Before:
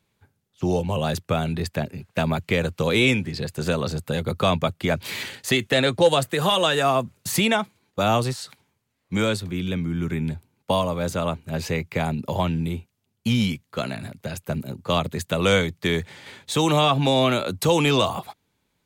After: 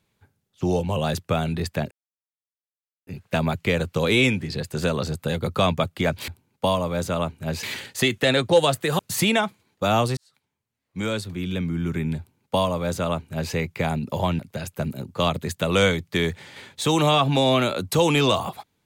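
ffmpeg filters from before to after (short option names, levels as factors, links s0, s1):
-filter_complex "[0:a]asplit=7[s0][s1][s2][s3][s4][s5][s6];[s0]atrim=end=1.91,asetpts=PTS-STARTPTS,afade=t=out:st=1.906:d=0.004:c=hsin,apad=pad_dur=1.16[s7];[s1]atrim=start=1.91:end=5.122,asetpts=PTS-STARTPTS,afade=t=in:d=0.004:c=hsin[s8];[s2]atrim=start=10.338:end=11.692[s9];[s3]atrim=start=5.118:end=6.482[s10];[s4]atrim=start=7.148:end=8.33,asetpts=PTS-STARTPTS,afade=t=out:st=1.178:d=0.004:c=hsin[s11];[s5]atrim=start=8.33:end=12.552,asetpts=PTS-STARTPTS,afade=t=in:d=1.48[s12];[s6]atrim=start=14.088[s13];[s7][s8]concat=n=2:v=0:a=1[s14];[s14][s9]acrossfade=d=0.004:c1=hsin:c2=hsin[s15];[s15][s10]acrossfade=d=0.004:c1=hsin:c2=hsin[s16];[s11][s12]concat=n=2:v=0:a=1[s17];[s16][s17]acrossfade=d=0.004:c1=hsin:c2=hsin[s18];[s18][s13]acrossfade=d=0.004:c1=hsin:c2=hsin"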